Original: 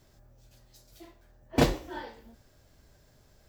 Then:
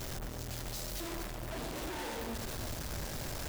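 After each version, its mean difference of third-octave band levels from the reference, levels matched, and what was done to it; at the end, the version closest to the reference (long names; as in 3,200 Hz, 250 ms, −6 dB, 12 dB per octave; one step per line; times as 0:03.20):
20.0 dB: sign of each sample alone
delay that swaps between a low-pass and a high-pass 114 ms, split 1,200 Hz, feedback 61%, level −4 dB
level −5 dB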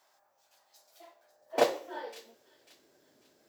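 5.5 dB: high-pass filter sweep 860 Hz → 300 Hz, 0:00.55–0:03.15
on a send: delay with a high-pass on its return 545 ms, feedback 33%, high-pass 2,800 Hz, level −13 dB
on the sum: level −3.5 dB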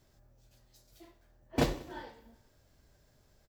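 1.0 dB: on a send: repeating echo 95 ms, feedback 60%, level −20 dB
on the sum: every ending faded ahead of time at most 350 dB per second
level −5.5 dB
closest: third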